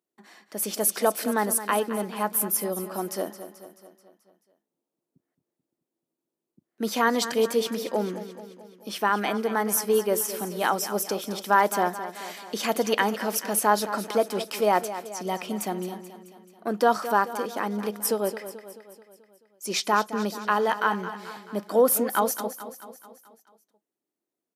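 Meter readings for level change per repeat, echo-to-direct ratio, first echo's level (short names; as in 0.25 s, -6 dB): -5.0 dB, -11.0 dB, -12.5 dB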